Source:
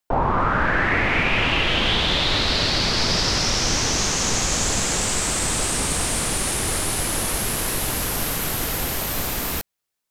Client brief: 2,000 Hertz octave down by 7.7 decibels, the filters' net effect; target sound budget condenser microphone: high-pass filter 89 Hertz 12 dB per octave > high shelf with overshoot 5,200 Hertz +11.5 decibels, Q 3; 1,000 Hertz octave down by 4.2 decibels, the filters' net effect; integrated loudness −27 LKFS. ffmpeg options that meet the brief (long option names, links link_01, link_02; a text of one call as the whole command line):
ffmpeg -i in.wav -af "highpass=89,equalizer=frequency=1000:width_type=o:gain=-3,equalizer=frequency=2000:width_type=o:gain=-6.5,highshelf=frequency=5200:width_type=q:width=3:gain=11.5,volume=-18dB" out.wav